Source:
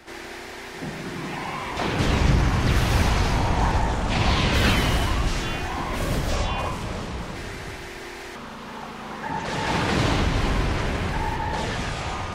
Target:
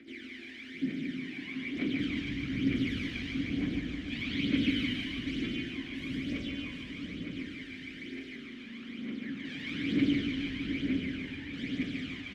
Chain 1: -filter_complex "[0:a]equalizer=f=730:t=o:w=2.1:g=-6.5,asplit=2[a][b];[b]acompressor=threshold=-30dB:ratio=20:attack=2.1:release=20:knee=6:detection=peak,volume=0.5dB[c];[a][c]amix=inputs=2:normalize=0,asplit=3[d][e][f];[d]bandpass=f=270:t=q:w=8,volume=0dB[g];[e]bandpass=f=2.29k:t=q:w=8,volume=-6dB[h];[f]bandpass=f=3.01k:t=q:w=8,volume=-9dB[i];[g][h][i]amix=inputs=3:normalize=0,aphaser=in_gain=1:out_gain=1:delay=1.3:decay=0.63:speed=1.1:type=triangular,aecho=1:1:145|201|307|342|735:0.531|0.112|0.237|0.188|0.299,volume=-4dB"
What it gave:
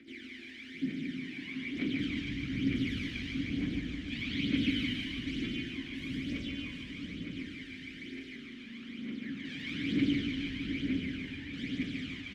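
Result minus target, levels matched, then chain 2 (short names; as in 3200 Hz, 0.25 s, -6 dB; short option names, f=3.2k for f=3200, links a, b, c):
1000 Hz band -2.5 dB
-filter_complex "[0:a]asplit=2[a][b];[b]acompressor=threshold=-30dB:ratio=20:attack=2.1:release=20:knee=6:detection=peak,volume=0.5dB[c];[a][c]amix=inputs=2:normalize=0,asplit=3[d][e][f];[d]bandpass=f=270:t=q:w=8,volume=0dB[g];[e]bandpass=f=2.29k:t=q:w=8,volume=-6dB[h];[f]bandpass=f=3.01k:t=q:w=8,volume=-9dB[i];[g][h][i]amix=inputs=3:normalize=0,aphaser=in_gain=1:out_gain=1:delay=1.3:decay=0.63:speed=1.1:type=triangular,aecho=1:1:145|201|307|342|735:0.531|0.112|0.237|0.188|0.299,volume=-4dB"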